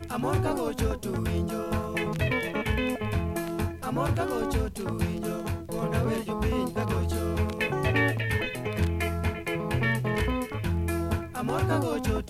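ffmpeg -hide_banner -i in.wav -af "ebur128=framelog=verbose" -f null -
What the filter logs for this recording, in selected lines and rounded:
Integrated loudness:
  I:         -28.6 LUFS
  Threshold: -38.6 LUFS
Loudness range:
  LRA:         1.9 LU
  Threshold: -48.7 LUFS
  LRA low:   -29.6 LUFS
  LRA high:  -27.7 LUFS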